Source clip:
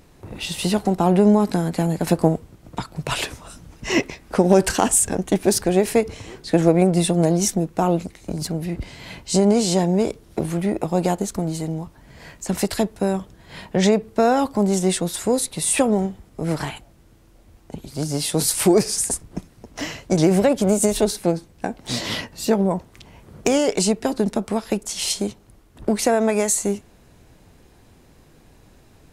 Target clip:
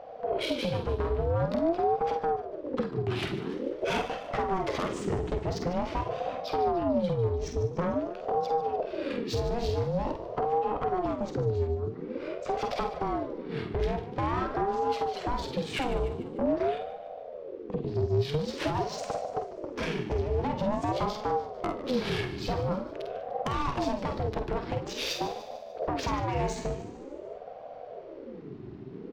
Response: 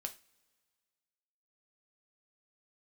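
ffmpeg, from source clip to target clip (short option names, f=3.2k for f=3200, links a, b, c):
-filter_complex "[0:a]lowpass=f=5.5k:w=0.5412,lowpass=f=5.5k:w=1.3066,lowshelf=f=190:t=q:w=3:g=8,acompressor=threshold=-22dB:ratio=6,asoftclip=type=tanh:threshold=-23dB,adynamicsmooth=sensitivity=3.5:basefreq=3.1k,aecho=1:1:148|296|444|592|740:0.2|0.102|0.0519|0.0265|0.0135,asplit=2[a][b];[1:a]atrim=start_sample=2205,adelay=48[c];[b][c]afir=irnorm=-1:irlink=0,volume=-3.5dB[d];[a][d]amix=inputs=2:normalize=0,aeval=exprs='val(0)*sin(2*PI*440*n/s+440*0.45/0.47*sin(2*PI*0.47*n/s))':c=same,volume=1.5dB"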